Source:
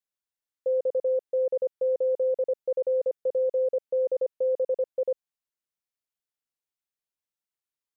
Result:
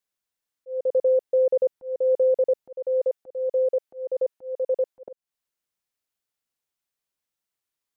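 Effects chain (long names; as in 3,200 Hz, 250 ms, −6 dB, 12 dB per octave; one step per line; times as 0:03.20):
0:02.74–0:05.06: low-shelf EQ 300 Hz −9 dB
volume swells 308 ms
level +5.5 dB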